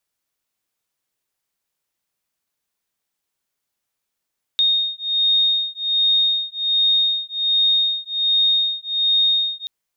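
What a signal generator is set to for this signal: beating tones 3.7 kHz, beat 1.3 Hz, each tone -19 dBFS 5.08 s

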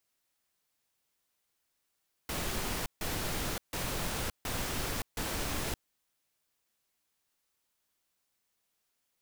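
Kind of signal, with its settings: noise bursts pink, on 0.57 s, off 0.15 s, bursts 5, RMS -34.5 dBFS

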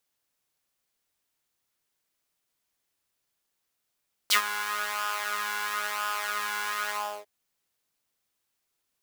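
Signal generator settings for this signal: synth patch with pulse-width modulation G#3, sub -9.5 dB, noise -11 dB, filter highpass, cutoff 490 Hz, Q 2.8, filter envelope 3.5 oct, filter decay 0.06 s, attack 12 ms, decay 0.10 s, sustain -14.5 dB, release 0.35 s, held 2.60 s, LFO 0.99 Hz, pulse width 22%, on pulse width 12%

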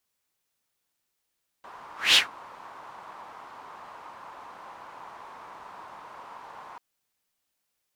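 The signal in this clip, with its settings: whoosh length 5.14 s, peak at 0.51 s, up 0.21 s, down 0.15 s, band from 990 Hz, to 3.4 kHz, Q 3.6, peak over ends 29 dB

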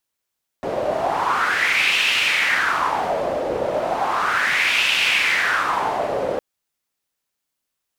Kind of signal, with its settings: wind-like swept noise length 5.76 s, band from 520 Hz, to 2.7 kHz, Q 4.1, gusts 2, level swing 4.5 dB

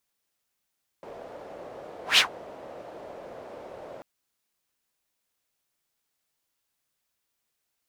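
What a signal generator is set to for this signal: whoosh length 2.99 s, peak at 1.15 s, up 0.14 s, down 0.12 s, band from 570 Hz, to 3.3 kHz, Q 2.7, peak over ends 26 dB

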